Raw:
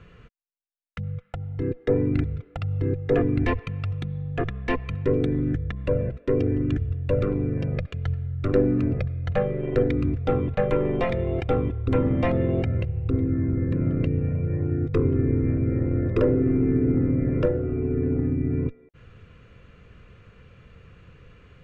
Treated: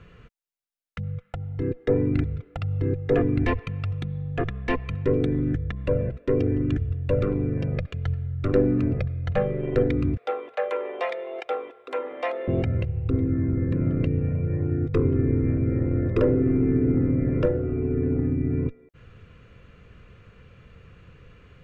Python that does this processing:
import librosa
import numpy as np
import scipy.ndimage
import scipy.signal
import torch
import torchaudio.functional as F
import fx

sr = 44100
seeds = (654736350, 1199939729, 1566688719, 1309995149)

y = fx.highpass(x, sr, hz=510.0, slope=24, at=(10.17, 12.48))